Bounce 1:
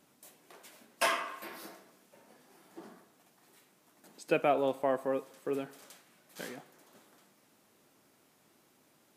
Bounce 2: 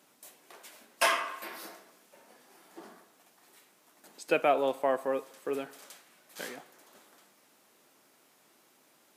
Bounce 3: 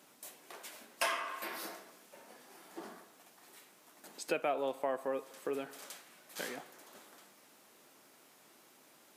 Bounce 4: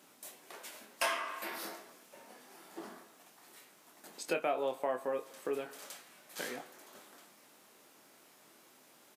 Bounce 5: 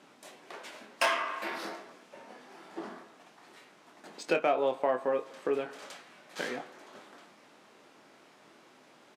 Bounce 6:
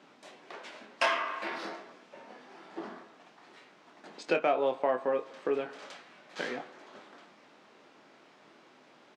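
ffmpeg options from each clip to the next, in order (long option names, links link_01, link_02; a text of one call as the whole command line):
ffmpeg -i in.wav -af "highpass=frequency=430:poles=1,volume=4dB" out.wav
ffmpeg -i in.wav -af "acompressor=threshold=-40dB:ratio=2,volume=2dB" out.wav
ffmpeg -i in.wav -filter_complex "[0:a]asplit=2[link_01][link_02];[link_02]adelay=24,volume=-7.5dB[link_03];[link_01][link_03]amix=inputs=2:normalize=0" out.wav
ffmpeg -i in.wav -af "adynamicsmooth=sensitivity=5.5:basefreq=4700,volume=6dB" out.wav
ffmpeg -i in.wav -af "highpass=100,lowpass=5600" out.wav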